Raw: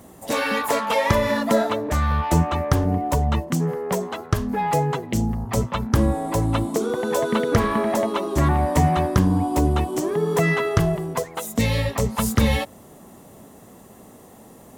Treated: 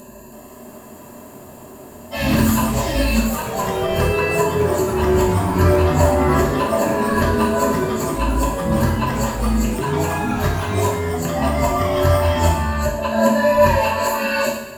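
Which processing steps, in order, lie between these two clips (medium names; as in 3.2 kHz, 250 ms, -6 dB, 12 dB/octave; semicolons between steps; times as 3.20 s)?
reverse the whole clip; rippled EQ curve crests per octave 1.4, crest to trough 17 dB; upward compressor, threshold -33 dBFS; ever faster or slower copies 323 ms, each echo +3 st, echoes 3, each echo -6 dB; two-slope reverb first 0.71 s, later 2.8 s, from -18 dB, DRR -4.5 dB; trim -6 dB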